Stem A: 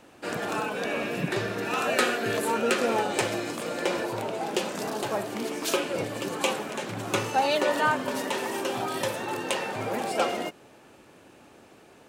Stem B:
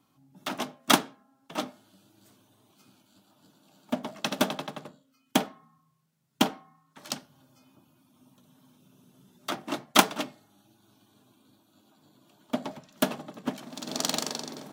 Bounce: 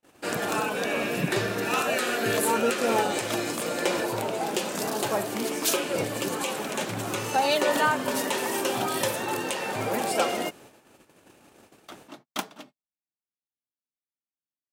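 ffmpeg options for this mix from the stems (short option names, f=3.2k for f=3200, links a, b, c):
-filter_complex "[0:a]crystalizer=i=1:c=0,volume=2dB[a];[1:a]adelay=2400,volume=-12.5dB[b];[a][b]amix=inputs=2:normalize=0,agate=range=-36dB:threshold=-49dB:ratio=16:detection=peak,alimiter=limit=-12dB:level=0:latency=1:release=203"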